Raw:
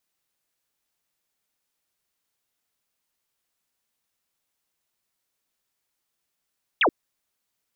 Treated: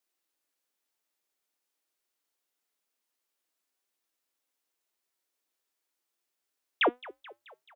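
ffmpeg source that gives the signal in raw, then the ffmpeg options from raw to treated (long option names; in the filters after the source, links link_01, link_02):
-f lavfi -i "aevalsrc='0.158*clip(t/0.002,0,1)*clip((0.08-t)/0.002,0,1)*sin(2*PI*3700*0.08/log(260/3700)*(exp(log(260/3700)*t/0.08)-1))':duration=0.08:sample_rate=44100"
-filter_complex "[0:a]lowshelf=frequency=220:width_type=q:width=1.5:gain=-10,flanger=delay=2.5:depth=4:regen=87:speed=0.26:shape=triangular,asplit=6[link_01][link_02][link_03][link_04][link_05][link_06];[link_02]adelay=216,afreqshift=48,volume=-20dB[link_07];[link_03]adelay=432,afreqshift=96,volume=-24.4dB[link_08];[link_04]adelay=648,afreqshift=144,volume=-28.9dB[link_09];[link_05]adelay=864,afreqshift=192,volume=-33.3dB[link_10];[link_06]adelay=1080,afreqshift=240,volume=-37.7dB[link_11];[link_01][link_07][link_08][link_09][link_10][link_11]amix=inputs=6:normalize=0"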